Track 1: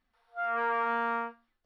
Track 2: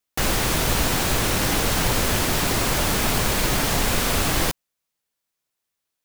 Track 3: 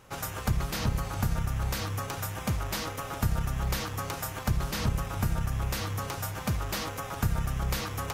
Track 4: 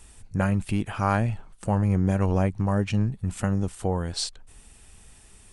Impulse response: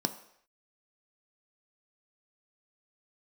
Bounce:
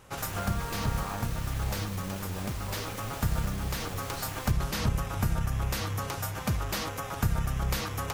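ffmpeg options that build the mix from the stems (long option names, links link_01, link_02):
-filter_complex "[0:a]acompressor=threshold=-36dB:ratio=6,volume=-1dB[link_01];[1:a]acrusher=bits=5:dc=4:mix=0:aa=0.000001,asoftclip=type=tanh:threshold=-16dB,volume=-20dB[link_02];[2:a]volume=0.5dB[link_03];[3:a]flanger=delay=17:depth=4.1:speed=0.67,volume=-13dB,asplit=2[link_04][link_05];[link_05]apad=whole_len=358912[link_06];[link_03][link_06]sidechaincompress=threshold=-37dB:ratio=8:attack=45:release=1140[link_07];[link_01][link_02][link_07][link_04]amix=inputs=4:normalize=0"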